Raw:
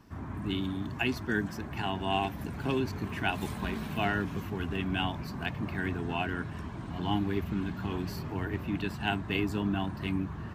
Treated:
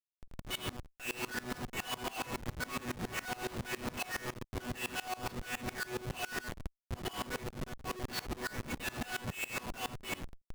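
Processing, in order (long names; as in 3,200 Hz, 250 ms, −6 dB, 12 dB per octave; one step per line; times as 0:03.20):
0:02.24–0:03.33: linear delta modulator 16 kbit/s, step −32.5 dBFS
0:07.62–0:08.65: high-pass filter 94 Hz 12 dB per octave
mains-hum notches 50/100/150/200/250 Hz
reverb reduction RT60 1.4 s
resonators tuned to a chord B3 fifth, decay 0.64 s
downward compressor 6 to 1, threshold −54 dBFS, peak gain reduction 10 dB
drawn EQ curve 150 Hz 0 dB, 330 Hz +1 dB, 2,100 Hz +15 dB
comparator with hysteresis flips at −51.5 dBFS
tremolo with a ramp in dB swelling 7.2 Hz, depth 23 dB
level +18 dB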